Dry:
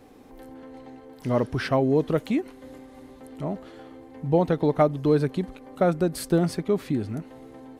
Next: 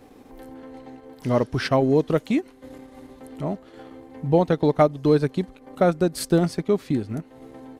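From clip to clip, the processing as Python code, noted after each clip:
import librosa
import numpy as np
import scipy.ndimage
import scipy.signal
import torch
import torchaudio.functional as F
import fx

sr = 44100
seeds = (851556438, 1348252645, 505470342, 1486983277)

y = fx.dynamic_eq(x, sr, hz=5700.0, q=0.75, threshold_db=-50.0, ratio=4.0, max_db=5)
y = fx.transient(y, sr, attack_db=0, sustain_db=-7)
y = F.gain(torch.from_numpy(y), 2.5).numpy()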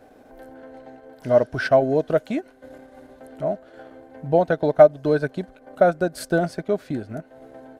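y = fx.small_body(x, sr, hz=(640.0, 1500.0), ring_ms=25, db=15)
y = F.gain(torch.from_numpy(y), -5.0).numpy()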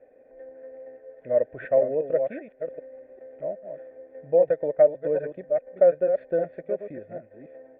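y = fx.reverse_delay(x, sr, ms=399, wet_db=-7.5)
y = fx.formant_cascade(y, sr, vowel='e')
y = F.gain(torch.from_numpy(y), 3.5).numpy()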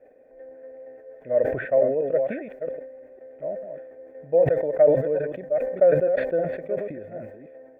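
y = fx.sustainer(x, sr, db_per_s=60.0)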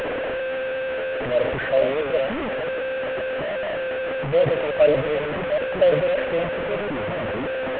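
y = fx.delta_mod(x, sr, bps=16000, step_db=-20.0)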